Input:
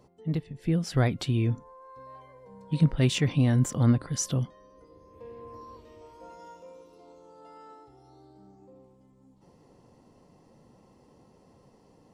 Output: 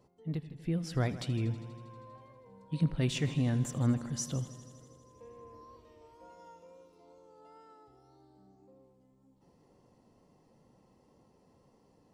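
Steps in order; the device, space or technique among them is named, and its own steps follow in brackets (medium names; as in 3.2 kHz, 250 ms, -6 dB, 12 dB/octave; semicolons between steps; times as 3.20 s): multi-head tape echo (multi-head delay 80 ms, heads first and second, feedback 68%, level -18.5 dB; wow and flutter 25 cents); trim -7 dB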